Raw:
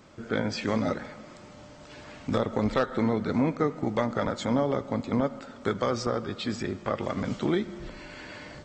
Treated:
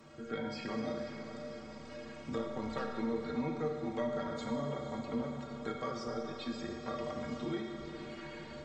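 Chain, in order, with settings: metallic resonator 69 Hz, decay 0.34 s, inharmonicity 0.03; on a send: diffused feedback echo 0.498 s, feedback 59%, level -11.5 dB; on the sum: Schroeder reverb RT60 1.4 s, combs from 25 ms, DRR 3 dB; three-band squash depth 40%; gain -3 dB

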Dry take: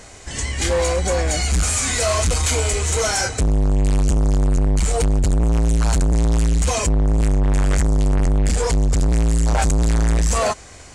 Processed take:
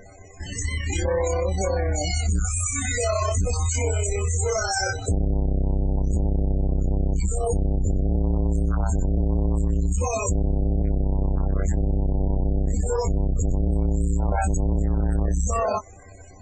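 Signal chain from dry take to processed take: loudest bins only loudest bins 32; compressor, threshold -18 dBFS, peak gain reduction 3 dB; granular stretch 1.5×, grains 62 ms

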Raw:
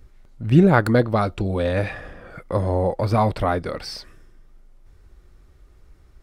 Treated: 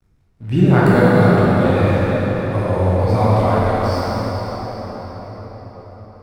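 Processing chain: crossover distortion -44 dBFS; reverb RT60 5.7 s, pre-delay 10 ms, DRR -9.5 dB; gain -4.5 dB

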